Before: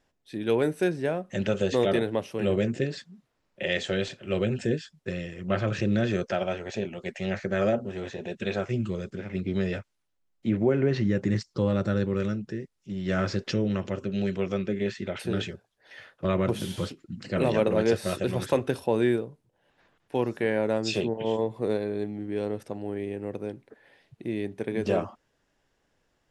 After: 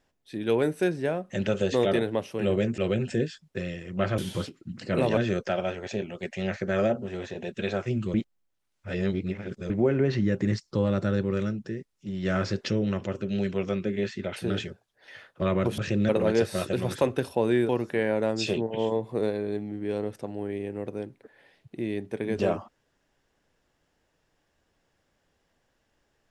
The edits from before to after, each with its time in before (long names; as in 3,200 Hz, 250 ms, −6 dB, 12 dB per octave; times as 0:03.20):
0:02.78–0:04.29: remove
0:05.69–0:06.00: swap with 0:16.61–0:17.60
0:08.97–0:10.53: reverse
0:19.20–0:20.16: remove